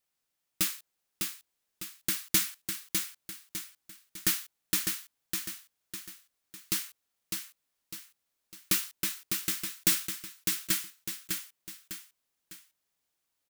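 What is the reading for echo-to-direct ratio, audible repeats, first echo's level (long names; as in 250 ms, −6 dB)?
−4.0 dB, 3, −5.0 dB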